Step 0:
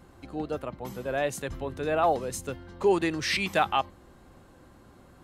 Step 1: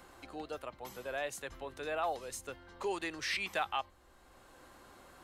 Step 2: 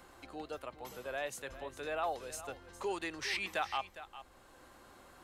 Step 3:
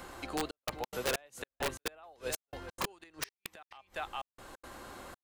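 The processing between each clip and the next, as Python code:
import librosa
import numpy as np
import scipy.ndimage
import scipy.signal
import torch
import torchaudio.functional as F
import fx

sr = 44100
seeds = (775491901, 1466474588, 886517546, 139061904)

y1 = fx.peak_eq(x, sr, hz=160.0, db=-14.5, octaves=2.6)
y1 = fx.band_squash(y1, sr, depth_pct=40)
y1 = y1 * librosa.db_to_amplitude(-6.0)
y2 = y1 + 10.0 ** (-14.0 / 20.0) * np.pad(y1, (int(408 * sr / 1000.0), 0))[:len(y1)]
y2 = y2 * librosa.db_to_amplitude(-1.0)
y3 = fx.step_gate(y2, sr, bpm=178, pattern='xxxxxx..xx.', floor_db=-60.0, edge_ms=4.5)
y3 = fx.gate_flip(y3, sr, shuts_db=-30.0, range_db=-29)
y3 = (np.mod(10.0 ** (35.0 / 20.0) * y3 + 1.0, 2.0) - 1.0) / 10.0 ** (35.0 / 20.0)
y3 = y3 * librosa.db_to_amplitude(10.0)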